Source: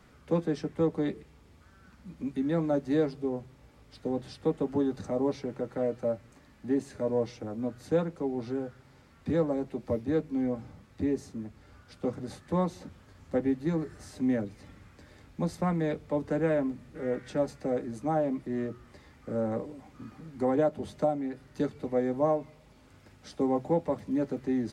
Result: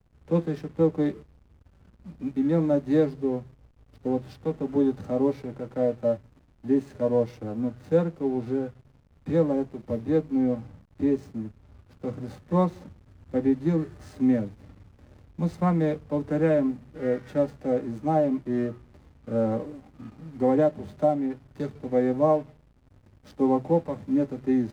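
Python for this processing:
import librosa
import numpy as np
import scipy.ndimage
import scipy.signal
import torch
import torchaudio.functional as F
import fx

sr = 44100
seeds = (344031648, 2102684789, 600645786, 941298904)

y = fx.hpss(x, sr, part='percussive', gain_db=-9)
y = fx.backlash(y, sr, play_db=-49.5)
y = y * 10.0 ** (6.0 / 20.0)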